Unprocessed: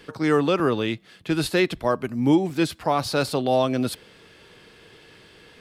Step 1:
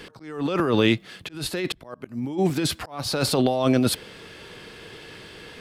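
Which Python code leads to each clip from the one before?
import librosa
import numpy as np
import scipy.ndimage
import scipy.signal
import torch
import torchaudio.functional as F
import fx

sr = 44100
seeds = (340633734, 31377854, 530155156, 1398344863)

y = fx.over_compress(x, sr, threshold_db=-25.0, ratio=-1.0)
y = fx.auto_swell(y, sr, attack_ms=412.0)
y = y * 10.0 ** (4.0 / 20.0)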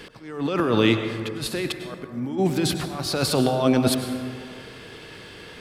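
y = fx.rev_plate(x, sr, seeds[0], rt60_s=2.1, hf_ratio=0.35, predelay_ms=85, drr_db=6.5)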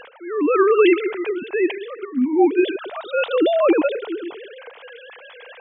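y = fx.sine_speech(x, sr)
y = y * 10.0 ** (4.5 / 20.0)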